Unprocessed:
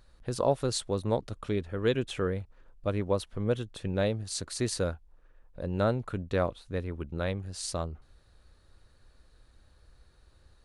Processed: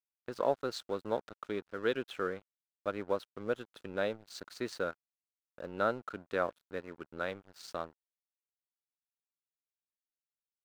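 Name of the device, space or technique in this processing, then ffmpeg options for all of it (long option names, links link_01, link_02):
pocket radio on a weak battery: -af "highpass=280,lowpass=4300,aeval=exprs='sgn(val(0))*max(abs(val(0))-0.00355,0)':channel_layout=same,equalizer=frequency=1400:width_type=o:width=0.37:gain=8,volume=-3.5dB"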